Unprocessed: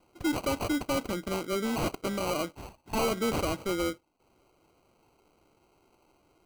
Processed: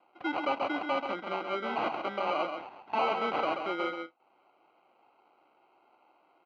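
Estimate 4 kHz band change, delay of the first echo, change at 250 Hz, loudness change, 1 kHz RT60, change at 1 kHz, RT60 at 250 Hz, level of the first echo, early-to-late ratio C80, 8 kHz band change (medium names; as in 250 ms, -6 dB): -3.5 dB, 134 ms, -7.0 dB, -1.5 dB, no reverb, +4.5 dB, no reverb, -6.5 dB, no reverb, under -25 dB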